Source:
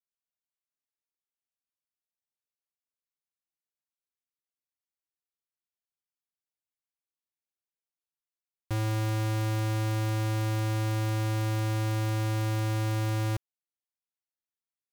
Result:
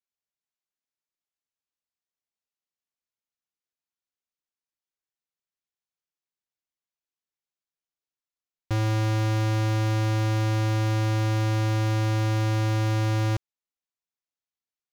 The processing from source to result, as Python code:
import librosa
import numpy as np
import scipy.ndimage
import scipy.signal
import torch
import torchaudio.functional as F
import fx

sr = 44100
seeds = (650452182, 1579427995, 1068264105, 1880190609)

y = scipy.signal.sosfilt(scipy.signal.butter(12, 7600.0, 'lowpass', fs=sr, output='sos'), x)
y = fx.leveller(y, sr, passes=2)
y = y * librosa.db_to_amplitude(3.0)